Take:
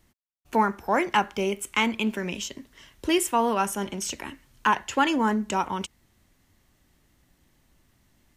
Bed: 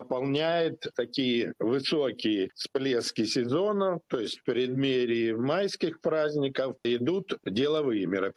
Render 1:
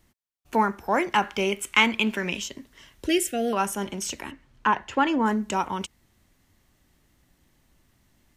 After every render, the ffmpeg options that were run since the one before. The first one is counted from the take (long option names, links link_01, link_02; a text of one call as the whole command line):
ffmpeg -i in.wav -filter_complex "[0:a]asettb=1/sr,asplit=3[link_01][link_02][link_03];[link_01]atrim=end=1.224[link_04];[link_02]atrim=start=1.22:end=2.4,asetpts=PTS-STARTPTS,afade=type=in:duration=0.004:curve=qsin,afade=type=out:start_time=1.176:duration=0.004:curve=qsin,equalizer=frequency=2300:width=0.5:gain=6[link_05];[link_03]atrim=start=2.396[link_06];[link_04][link_05]acrossfade=duration=0.004:curve1=hsin:curve2=qsin[link_07];[link_07][link_06]acrossfade=duration=0.004:curve1=qsin:curve2=hsin,asettb=1/sr,asplit=3[link_08][link_09][link_10];[link_08]atrim=end=3.064[link_11];[link_09]atrim=start=3.06:end=3.53,asetpts=PTS-STARTPTS,afade=type=in:duration=0.004:curve=qsin,afade=type=out:start_time=0.466:duration=0.004:curve=qsin,asuperstop=centerf=1000:order=8:qfactor=1.4[link_12];[link_10]atrim=start=3.526[link_13];[link_11][link_12]acrossfade=duration=0.004:curve1=hsin:curve2=qsin[link_14];[link_14][link_13]acrossfade=duration=0.004:curve1=qsin:curve2=hsin,asettb=1/sr,asplit=3[link_15][link_16][link_17];[link_15]atrim=end=4.314[link_18];[link_16]atrim=start=4.31:end=5.26,asetpts=PTS-STARTPTS,afade=type=in:duration=0.004:curve=qsin,afade=type=out:start_time=0.946:duration=0.004:curve=qsin,aemphasis=mode=reproduction:type=75fm[link_19];[link_17]atrim=start=5.256[link_20];[link_18][link_19]acrossfade=duration=0.004:curve1=hsin:curve2=qsin[link_21];[link_21][link_20]acrossfade=duration=0.004:curve1=qsin:curve2=hsin" out.wav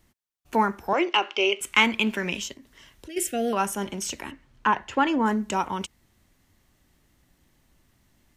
ffmpeg -i in.wav -filter_complex "[0:a]asettb=1/sr,asplit=3[link_01][link_02][link_03];[link_01]atrim=end=0.934[link_04];[link_02]atrim=start=0.93:end=1.61,asetpts=PTS-STARTPTS,afade=type=in:duration=0.004:curve=qsin,afade=type=out:start_time=0.676:duration=0.004:curve=qsin,highpass=frequency=340:width=0.5412,highpass=frequency=340:width=1.3066,equalizer=frequency=340:width_type=q:width=4:gain=7,equalizer=frequency=890:width_type=q:width=4:gain=-3,equalizer=frequency=1700:width_type=q:width=4:gain=-8,equalizer=frequency=2800:width_type=q:width=4:gain=10,lowpass=frequency=6000:width=0.5412,lowpass=frequency=6000:width=1.3066[link_05];[link_03]atrim=start=1.606[link_06];[link_04][link_05]acrossfade=duration=0.004:curve1=hsin:curve2=qsin[link_07];[link_07][link_06]acrossfade=duration=0.004:curve1=qsin:curve2=hsin,asplit=3[link_08][link_09][link_10];[link_08]afade=type=out:start_time=2.53:duration=0.02[link_11];[link_09]acompressor=threshold=-46dB:ratio=2.5:attack=3.2:release=140:knee=1:detection=peak,afade=type=in:start_time=2.53:duration=0.02,afade=type=out:start_time=3.16:duration=0.02[link_12];[link_10]afade=type=in:start_time=3.16:duration=0.02[link_13];[link_11][link_12][link_13]amix=inputs=3:normalize=0" out.wav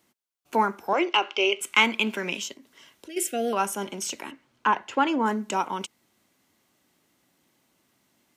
ffmpeg -i in.wav -af "highpass=230,bandreject=frequency=1800:width=11" out.wav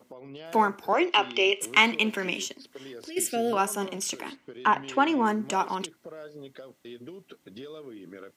ffmpeg -i in.wav -i bed.wav -filter_complex "[1:a]volume=-16dB[link_01];[0:a][link_01]amix=inputs=2:normalize=0" out.wav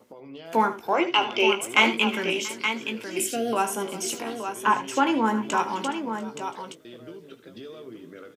ffmpeg -i in.wav -filter_complex "[0:a]asplit=2[link_01][link_02];[link_02]adelay=18,volume=-8.5dB[link_03];[link_01][link_03]amix=inputs=2:normalize=0,asplit=2[link_04][link_05];[link_05]aecho=0:1:76|358|683|872:0.237|0.106|0.112|0.422[link_06];[link_04][link_06]amix=inputs=2:normalize=0" out.wav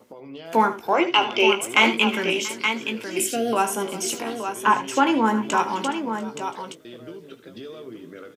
ffmpeg -i in.wav -af "volume=3dB,alimiter=limit=-2dB:level=0:latency=1" out.wav